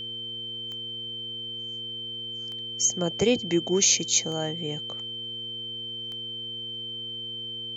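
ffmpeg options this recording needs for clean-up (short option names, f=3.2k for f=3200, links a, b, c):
-af "adeclick=t=4,bandreject=f=118.4:t=h:w=4,bandreject=f=236.8:t=h:w=4,bandreject=f=355.2:t=h:w=4,bandreject=f=473.6:t=h:w=4,bandreject=f=3.1k:w=30,agate=range=-21dB:threshold=-28dB"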